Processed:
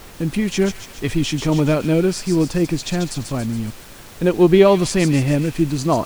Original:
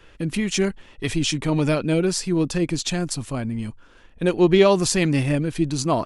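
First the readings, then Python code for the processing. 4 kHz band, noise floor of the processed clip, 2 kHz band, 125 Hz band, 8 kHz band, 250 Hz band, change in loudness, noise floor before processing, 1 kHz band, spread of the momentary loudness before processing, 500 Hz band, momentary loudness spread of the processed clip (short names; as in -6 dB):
-0.5 dB, -40 dBFS, +1.0 dB, +4.0 dB, -1.5 dB, +4.0 dB, +3.5 dB, -50 dBFS, +3.0 dB, 11 LU, +3.5 dB, 11 LU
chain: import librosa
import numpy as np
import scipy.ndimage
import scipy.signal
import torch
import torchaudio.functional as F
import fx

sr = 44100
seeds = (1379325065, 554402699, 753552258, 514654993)

p1 = fx.high_shelf(x, sr, hz=2200.0, db=-8.0)
p2 = fx.dmg_noise_colour(p1, sr, seeds[0], colour='pink', level_db=-45.0)
p3 = p2 + fx.echo_wet_highpass(p2, sr, ms=140, feedback_pct=60, hz=2900.0, wet_db=-5, dry=0)
y = p3 * librosa.db_to_amplitude(4.0)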